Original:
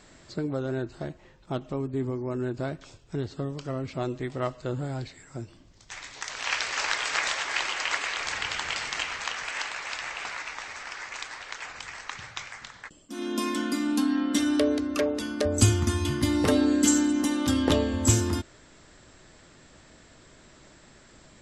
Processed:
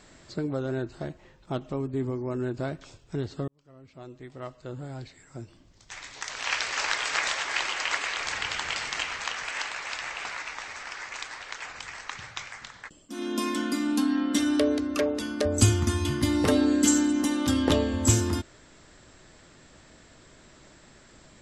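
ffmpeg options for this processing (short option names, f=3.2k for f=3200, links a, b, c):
-filter_complex "[0:a]asplit=2[a][b];[a]atrim=end=3.48,asetpts=PTS-STARTPTS,afade=t=out:st=3.476:d=0.004:c=hsin[c];[b]atrim=start=3.48,asetpts=PTS-STARTPTS,afade=t=in:d=2.76[d];[c][d]concat=n=2:v=0:a=1"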